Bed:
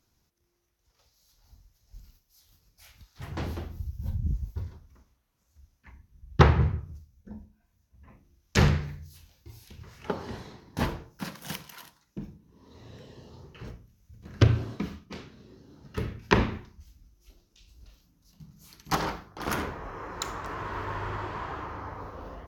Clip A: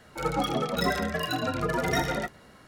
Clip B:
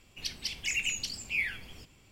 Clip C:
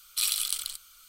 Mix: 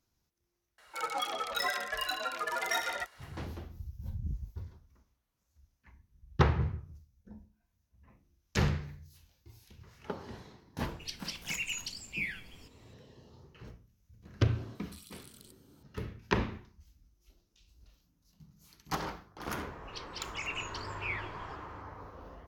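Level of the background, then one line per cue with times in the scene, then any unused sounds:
bed -7.5 dB
0.78 s: add A -2 dB + high-pass 880 Hz
10.83 s: add B -5 dB
14.75 s: add C -18 dB + compression, threshold -32 dBFS
19.71 s: add B -6.5 dB + low-pass 4.5 kHz

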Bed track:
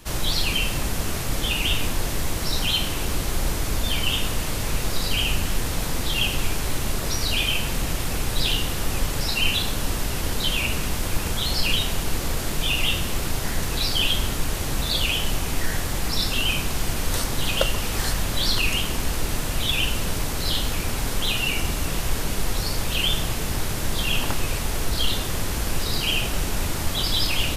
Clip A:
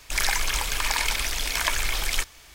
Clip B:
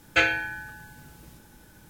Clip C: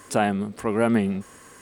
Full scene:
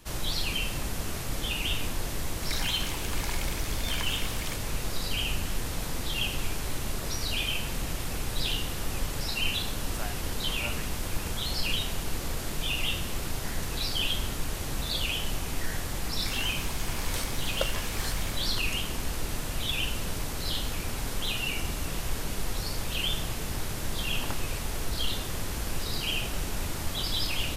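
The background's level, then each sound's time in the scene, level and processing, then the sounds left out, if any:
bed track -7 dB
2.33 s: add A -12.5 dB
9.83 s: add C -13.5 dB + high-pass 880 Hz
16.08 s: add A -17.5 dB + spectral sustain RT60 0.42 s
not used: B

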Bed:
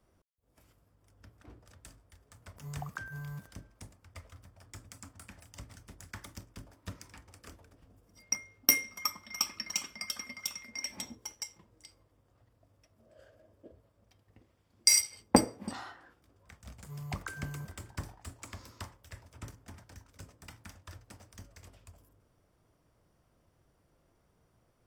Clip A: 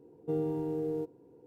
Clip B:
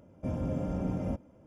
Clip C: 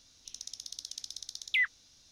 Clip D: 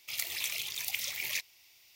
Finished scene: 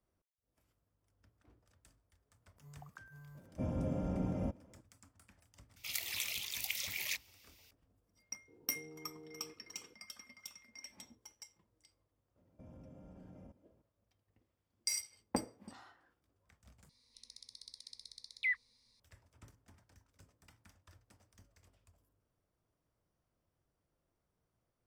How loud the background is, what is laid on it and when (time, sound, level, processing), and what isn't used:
bed -13.5 dB
3.35 s: add B -4 dB
5.76 s: add D -4 dB
8.48 s: add A -7.5 dB + compression 2.5:1, threshold -50 dBFS
12.36 s: add B -15.5 dB + compression, threshold -36 dBFS
16.89 s: replace with C -12.5 dB + rippled EQ curve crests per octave 0.94, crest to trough 15 dB

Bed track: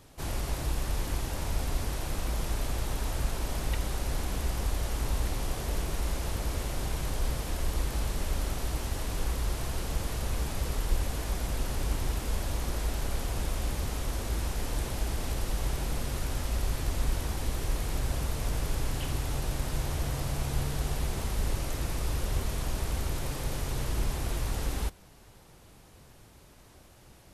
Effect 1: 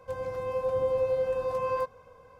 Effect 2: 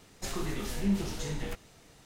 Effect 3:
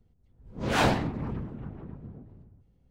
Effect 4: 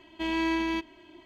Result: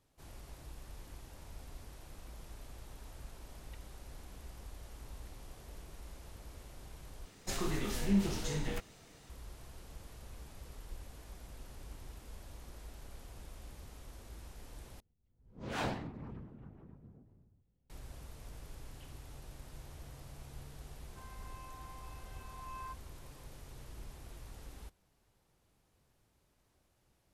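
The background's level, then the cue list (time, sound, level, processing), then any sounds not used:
bed track -19 dB
7.25 s: replace with 2 -1 dB
15.00 s: replace with 3 -13 dB
21.08 s: add 1 -12.5 dB + steep high-pass 660 Hz 96 dB/octave
not used: 4

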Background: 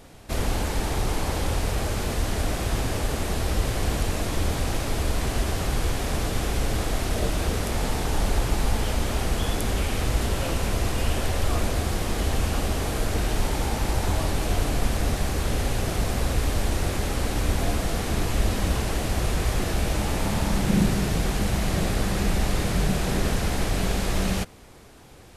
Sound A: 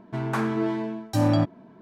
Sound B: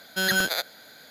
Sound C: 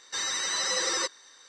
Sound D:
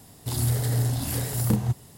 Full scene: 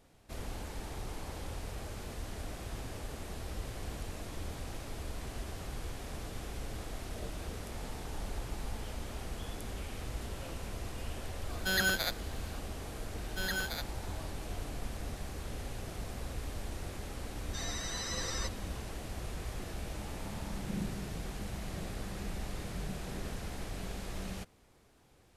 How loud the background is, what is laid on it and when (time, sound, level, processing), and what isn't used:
background -16 dB
11.49 s: add B -6.5 dB
13.20 s: add B -12.5 dB
17.41 s: add C -11 dB
not used: A, D

